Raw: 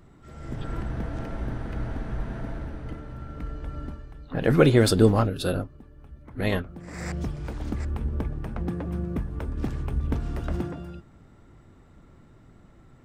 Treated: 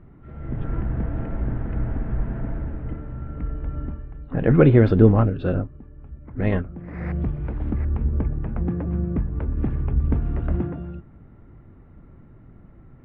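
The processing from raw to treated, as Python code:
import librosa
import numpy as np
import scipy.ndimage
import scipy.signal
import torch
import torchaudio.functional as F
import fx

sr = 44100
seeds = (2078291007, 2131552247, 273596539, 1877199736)

y = scipy.signal.sosfilt(scipy.signal.butter(4, 2500.0, 'lowpass', fs=sr, output='sos'), x)
y = fx.low_shelf(y, sr, hz=400.0, db=8.0)
y = F.gain(torch.from_numpy(y), -1.5).numpy()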